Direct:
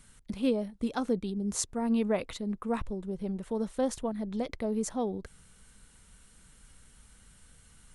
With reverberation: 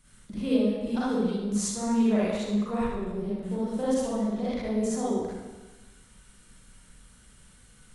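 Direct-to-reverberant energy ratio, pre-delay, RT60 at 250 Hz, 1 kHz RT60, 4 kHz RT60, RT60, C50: −9.5 dB, 38 ms, 1.2 s, 1.2 s, 1.1 s, 1.2 s, −5.5 dB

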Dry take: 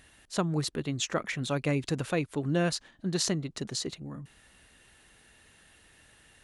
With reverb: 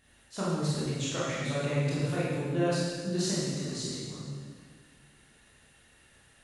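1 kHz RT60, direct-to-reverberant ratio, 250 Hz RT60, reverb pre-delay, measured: 1.6 s, −8.5 dB, 2.2 s, 18 ms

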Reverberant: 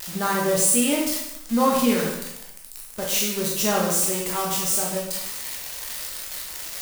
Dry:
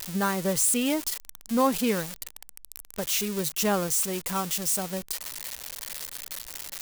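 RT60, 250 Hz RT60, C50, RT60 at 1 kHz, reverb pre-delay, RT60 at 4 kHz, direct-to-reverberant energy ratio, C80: 0.80 s, 0.85 s, 1.5 dB, 0.80 s, 7 ms, 0.75 s, −3.0 dB, 5.0 dB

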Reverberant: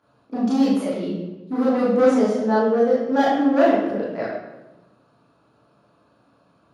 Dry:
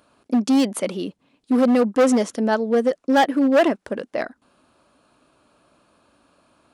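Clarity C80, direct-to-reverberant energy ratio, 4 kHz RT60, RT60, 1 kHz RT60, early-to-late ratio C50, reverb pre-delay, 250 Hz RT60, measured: 3.5 dB, −7.0 dB, 0.80 s, 1.1 s, 0.95 s, 1.0 dB, 17 ms, 1.8 s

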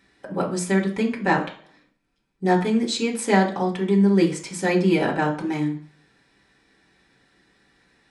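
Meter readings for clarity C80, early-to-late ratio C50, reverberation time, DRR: 15.0 dB, 10.5 dB, 0.50 s, −4.0 dB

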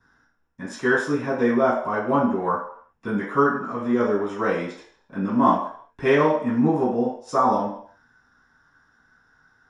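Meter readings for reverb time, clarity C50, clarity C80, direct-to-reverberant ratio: 0.60 s, 3.5 dB, 7.5 dB, −11.5 dB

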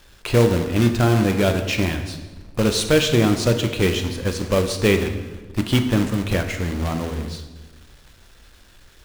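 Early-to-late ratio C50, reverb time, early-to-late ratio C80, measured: 8.0 dB, 1.3 s, 10.0 dB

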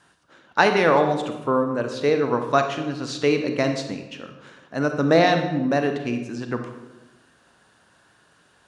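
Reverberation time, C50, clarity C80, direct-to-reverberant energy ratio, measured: 1.1 s, 7.0 dB, 9.5 dB, 6.0 dB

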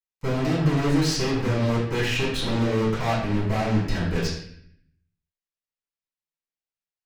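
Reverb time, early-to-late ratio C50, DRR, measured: 0.65 s, 2.0 dB, −11.5 dB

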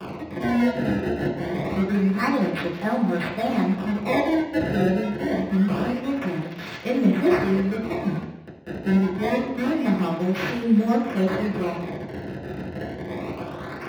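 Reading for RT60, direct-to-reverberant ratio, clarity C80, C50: 0.80 s, −7.0 dB, 7.5 dB, 5.0 dB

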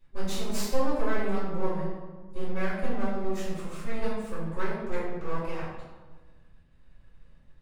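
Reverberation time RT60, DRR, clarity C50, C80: 1.4 s, −12.5 dB, 0.0 dB, 3.5 dB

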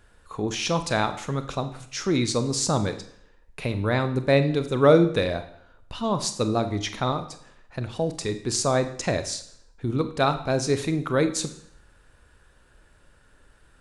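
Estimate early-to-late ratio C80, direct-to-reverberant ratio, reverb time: 15.0 dB, 9.5 dB, 0.70 s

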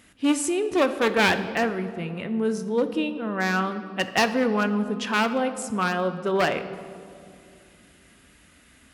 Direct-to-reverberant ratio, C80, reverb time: 9.0 dB, 12.5 dB, 2.4 s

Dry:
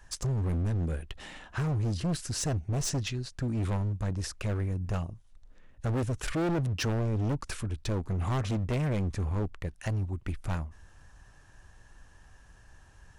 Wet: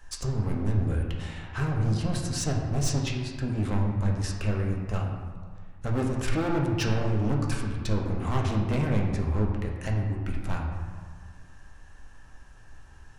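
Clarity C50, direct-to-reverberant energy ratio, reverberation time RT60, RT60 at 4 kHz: 3.0 dB, −1.0 dB, 1.7 s, 0.95 s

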